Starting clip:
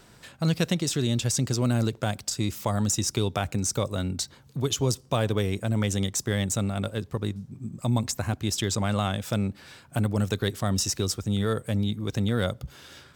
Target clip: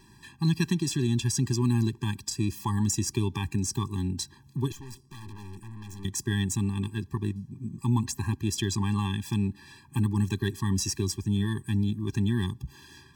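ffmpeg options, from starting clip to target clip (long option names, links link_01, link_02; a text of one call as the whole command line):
ffmpeg -i in.wav -filter_complex "[0:a]asettb=1/sr,asplit=3[link_01][link_02][link_03];[link_01]atrim=end=4.724[link_04];[link_02]atrim=start=4.72:end=6.05,asetpts=PTS-STARTPTS,afade=type=in:duration=0.004:curve=qsin,afade=type=out:start_time=1.326:duration=0.004:curve=qsin,aeval=exprs='(tanh(100*val(0)+0.7)-tanh(0.7))/100':channel_layout=same[link_05];[link_03]atrim=start=6.046[link_06];[link_04][link_05]acrossfade=duration=0.004:curve1=hsin:curve2=qsin[link_07];[link_07][link_06]acrossfade=duration=0.004:curve1=qsin:curve2=hsin,afftfilt=real='re*eq(mod(floor(b*sr/1024/390),2),0)':imag='im*eq(mod(floor(b*sr/1024/390),2),0)':win_size=1024:overlap=0.75" out.wav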